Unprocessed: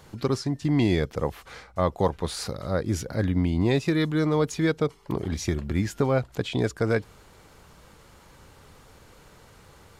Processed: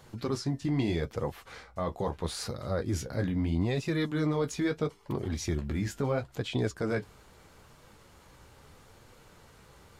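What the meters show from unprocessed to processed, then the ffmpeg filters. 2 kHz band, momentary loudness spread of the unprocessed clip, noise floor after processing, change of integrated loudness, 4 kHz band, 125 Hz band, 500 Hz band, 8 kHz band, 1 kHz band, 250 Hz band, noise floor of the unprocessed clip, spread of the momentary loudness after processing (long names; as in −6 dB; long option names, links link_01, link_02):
−6.0 dB, 8 LU, −57 dBFS, −6.0 dB, −5.0 dB, −5.5 dB, −6.5 dB, −4.0 dB, −7.0 dB, −6.0 dB, −53 dBFS, 7 LU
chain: -af "alimiter=limit=-17dB:level=0:latency=1:release=11,flanger=delay=8:depth=8.1:regen=-35:speed=0.77:shape=sinusoidal"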